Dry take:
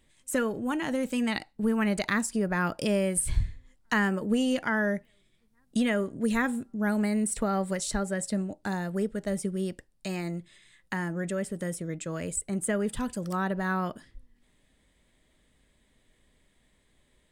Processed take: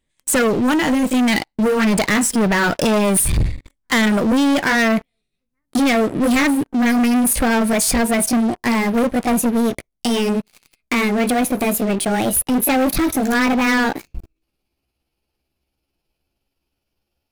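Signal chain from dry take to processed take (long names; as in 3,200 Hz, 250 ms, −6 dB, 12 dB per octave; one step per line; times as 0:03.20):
pitch glide at a constant tempo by +6 semitones starting unshifted
leveller curve on the samples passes 5
level +1.5 dB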